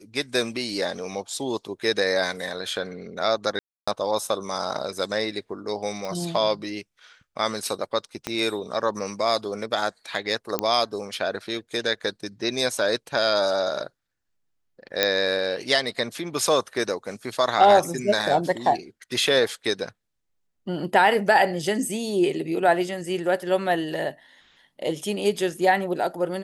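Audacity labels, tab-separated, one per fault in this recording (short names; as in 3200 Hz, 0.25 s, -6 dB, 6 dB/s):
3.590000	3.880000	gap 0.285 s
6.050000	6.050000	pop -19 dBFS
8.270000	8.270000	pop -11 dBFS
10.590000	10.590000	pop -7 dBFS
15.030000	15.030000	pop -4 dBFS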